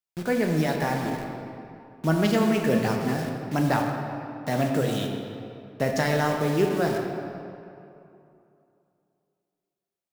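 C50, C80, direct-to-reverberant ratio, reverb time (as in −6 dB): 3.0 dB, 4.0 dB, 1.5 dB, 2.8 s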